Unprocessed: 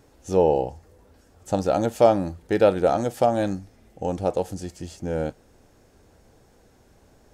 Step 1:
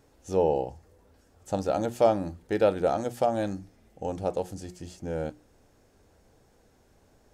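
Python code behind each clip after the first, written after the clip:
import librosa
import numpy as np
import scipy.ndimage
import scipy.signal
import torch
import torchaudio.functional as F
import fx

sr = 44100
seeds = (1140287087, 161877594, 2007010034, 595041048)

y = fx.hum_notches(x, sr, base_hz=60, count=6)
y = F.gain(torch.from_numpy(y), -5.0).numpy()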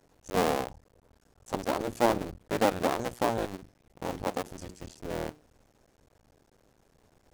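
y = fx.cycle_switch(x, sr, every=2, mode='muted')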